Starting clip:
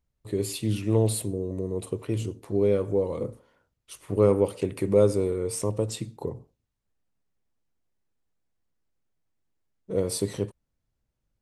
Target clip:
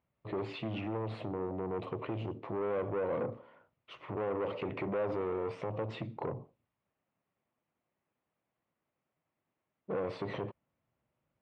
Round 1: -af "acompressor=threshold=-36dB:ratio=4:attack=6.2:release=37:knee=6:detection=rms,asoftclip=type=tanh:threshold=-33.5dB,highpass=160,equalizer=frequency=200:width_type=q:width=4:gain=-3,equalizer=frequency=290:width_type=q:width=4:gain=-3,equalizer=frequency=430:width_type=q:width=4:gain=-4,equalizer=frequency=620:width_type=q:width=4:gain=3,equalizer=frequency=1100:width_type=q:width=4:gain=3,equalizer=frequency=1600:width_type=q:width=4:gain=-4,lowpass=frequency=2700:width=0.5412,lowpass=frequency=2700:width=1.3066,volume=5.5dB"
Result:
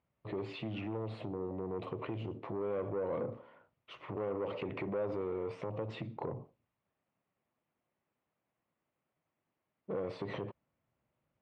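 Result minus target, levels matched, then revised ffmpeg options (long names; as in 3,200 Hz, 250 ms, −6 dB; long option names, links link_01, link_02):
downward compressor: peak gain reduction +5 dB
-af "acompressor=threshold=-29.5dB:ratio=4:attack=6.2:release=37:knee=6:detection=rms,asoftclip=type=tanh:threshold=-33.5dB,highpass=160,equalizer=frequency=200:width_type=q:width=4:gain=-3,equalizer=frequency=290:width_type=q:width=4:gain=-3,equalizer=frequency=430:width_type=q:width=4:gain=-4,equalizer=frequency=620:width_type=q:width=4:gain=3,equalizer=frequency=1100:width_type=q:width=4:gain=3,equalizer=frequency=1600:width_type=q:width=4:gain=-4,lowpass=frequency=2700:width=0.5412,lowpass=frequency=2700:width=1.3066,volume=5.5dB"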